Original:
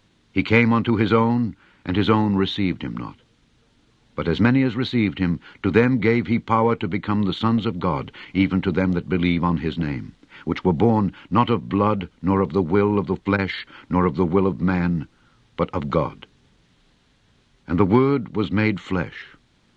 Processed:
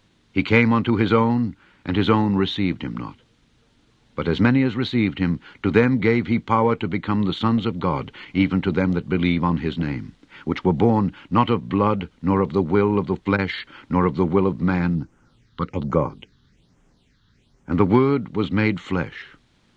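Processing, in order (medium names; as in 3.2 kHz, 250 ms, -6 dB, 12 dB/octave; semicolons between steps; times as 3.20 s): 14.95–17.72 s: phase shifter stages 6, 1.2 Hz, lowest notch 620–4000 Hz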